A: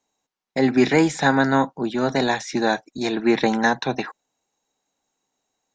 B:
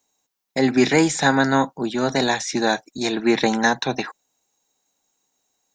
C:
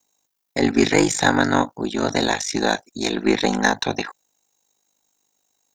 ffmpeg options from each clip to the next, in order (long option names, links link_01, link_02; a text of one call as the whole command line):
ffmpeg -i in.wav -af "aemphasis=mode=production:type=50kf" out.wav
ffmpeg -i in.wav -af "aeval=exprs='val(0)*sin(2*PI*25*n/s)':channel_layout=same,aeval=exprs='0.631*(cos(1*acos(clip(val(0)/0.631,-1,1)))-cos(1*PI/2))+0.0112*(cos(8*acos(clip(val(0)/0.631,-1,1)))-cos(8*PI/2))':channel_layout=same,highshelf=frequency=6800:gain=5,volume=2.5dB" out.wav